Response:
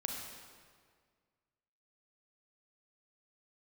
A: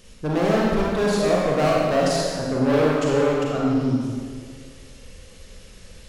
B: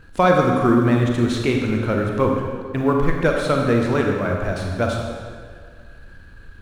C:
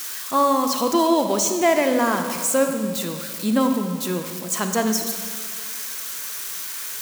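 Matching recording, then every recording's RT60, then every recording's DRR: B; 1.9 s, 1.9 s, 1.9 s; -4.0 dB, 0.5 dB, 5.5 dB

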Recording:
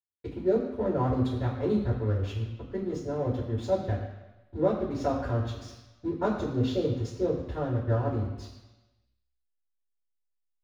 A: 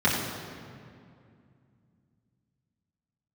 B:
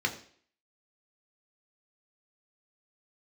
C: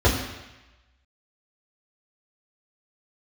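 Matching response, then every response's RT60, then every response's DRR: C; 2.4 s, 0.55 s, 1.0 s; -8.5 dB, 2.0 dB, -7.5 dB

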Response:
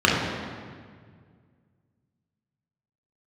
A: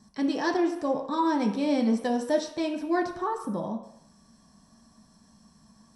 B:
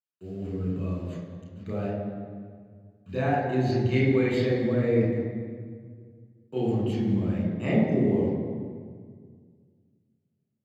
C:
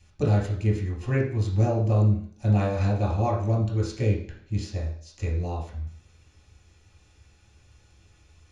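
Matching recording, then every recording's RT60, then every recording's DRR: B; no single decay rate, 1.9 s, 0.50 s; 1.0 dB, -4.5 dB, -4.5 dB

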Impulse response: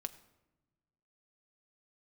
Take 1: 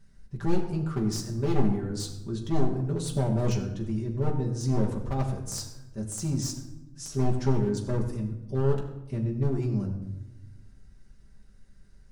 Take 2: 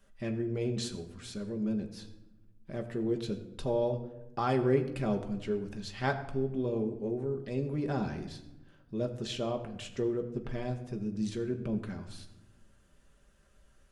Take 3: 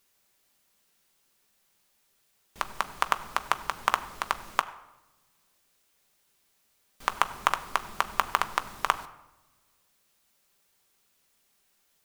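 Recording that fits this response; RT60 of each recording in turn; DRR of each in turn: 3; 1.0 s, 1.0 s, no single decay rate; -1.5 dB, 4.0 dB, 9.0 dB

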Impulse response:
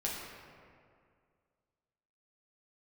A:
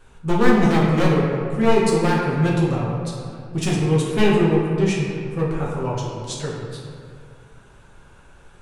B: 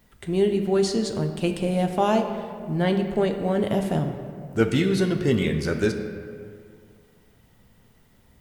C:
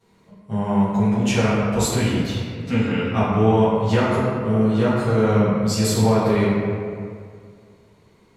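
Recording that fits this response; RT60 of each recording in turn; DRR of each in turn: A; 2.2 s, 2.2 s, 2.2 s; -5.0 dB, 5.0 dB, -13.5 dB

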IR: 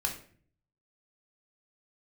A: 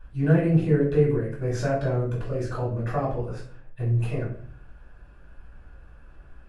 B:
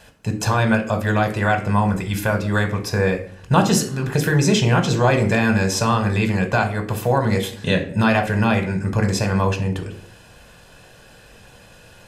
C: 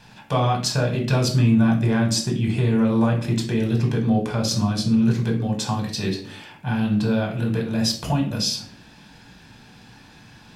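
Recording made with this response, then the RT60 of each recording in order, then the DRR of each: C; 0.50 s, 0.50 s, 0.50 s; -7.0 dB, 5.0 dB, 1.0 dB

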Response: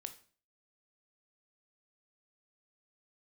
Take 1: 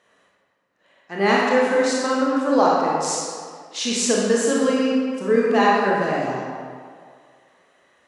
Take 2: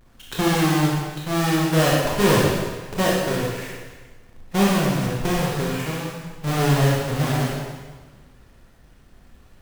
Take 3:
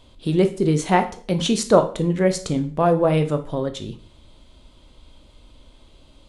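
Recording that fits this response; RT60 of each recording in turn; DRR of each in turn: 3; 2.0 s, 1.4 s, 0.40 s; -5.0 dB, -5.0 dB, 8.0 dB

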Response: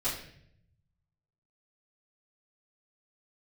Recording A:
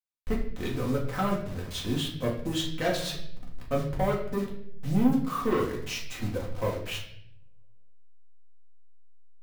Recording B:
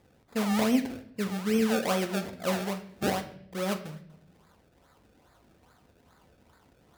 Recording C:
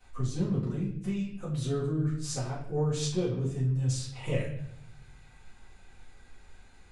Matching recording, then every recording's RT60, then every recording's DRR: C; 0.65 s, no single decay rate, 0.65 s; -3.5 dB, 6.0 dB, -13.0 dB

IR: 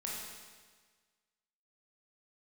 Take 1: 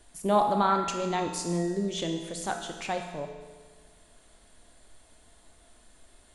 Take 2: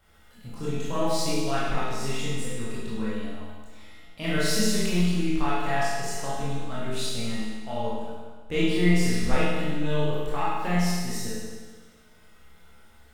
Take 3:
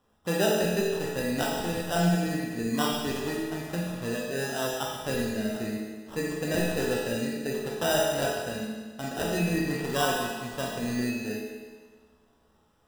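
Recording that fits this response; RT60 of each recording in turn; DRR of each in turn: 3; 1.5 s, 1.5 s, 1.5 s; 3.0 dB, -10.0 dB, -4.5 dB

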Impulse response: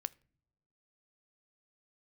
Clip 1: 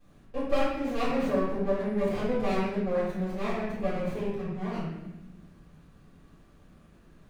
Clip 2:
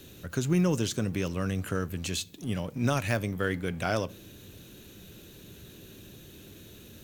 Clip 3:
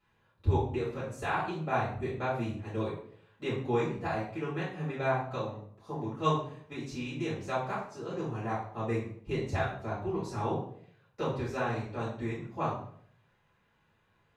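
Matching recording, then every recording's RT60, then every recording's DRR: 2; 1.1 s, no single decay rate, 0.60 s; -12.0 dB, 16.5 dB, -10.0 dB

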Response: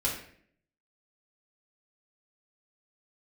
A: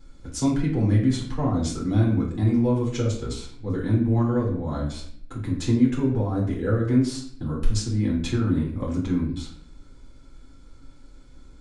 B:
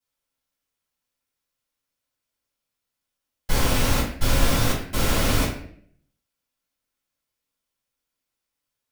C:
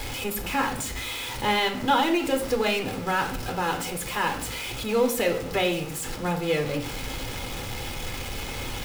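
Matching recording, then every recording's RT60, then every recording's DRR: A; 0.55 s, 0.55 s, 0.55 s; -4.5 dB, -11.5 dB, 4.0 dB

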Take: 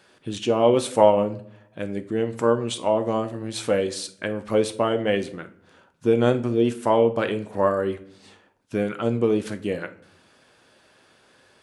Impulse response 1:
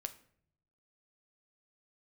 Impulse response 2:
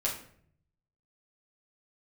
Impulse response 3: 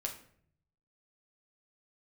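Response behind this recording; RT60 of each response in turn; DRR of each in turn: 1; 0.60 s, 0.60 s, 0.60 s; 8.0 dB, -6.0 dB, 0.0 dB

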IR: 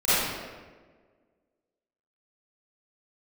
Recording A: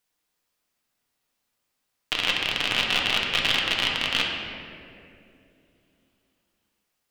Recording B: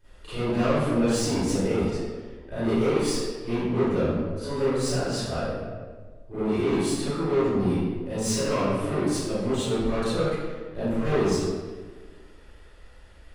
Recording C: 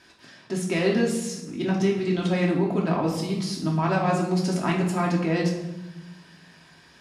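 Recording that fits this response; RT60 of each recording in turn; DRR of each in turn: B; 2.6 s, 1.5 s, 1.0 s; -2.0 dB, -16.5 dB, -2.5 dB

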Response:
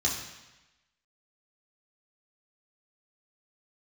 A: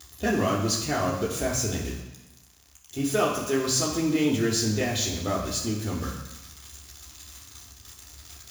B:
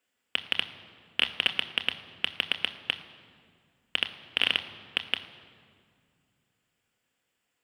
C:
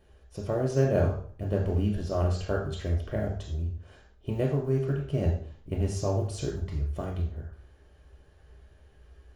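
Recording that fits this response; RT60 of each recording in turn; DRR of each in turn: A; 1.0 s, 2.2 s, 0.50 s; -4.0 dB, 7.5 dB, -1.0 dB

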